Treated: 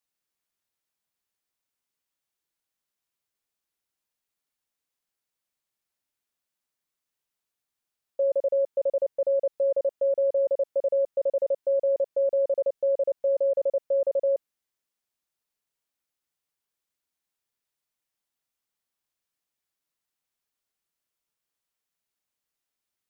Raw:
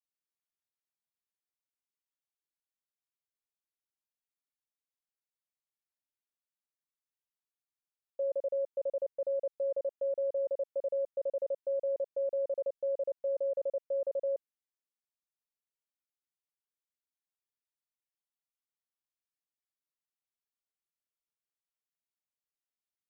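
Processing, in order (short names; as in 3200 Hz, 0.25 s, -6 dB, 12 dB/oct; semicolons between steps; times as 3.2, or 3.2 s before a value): gain +8.5 dB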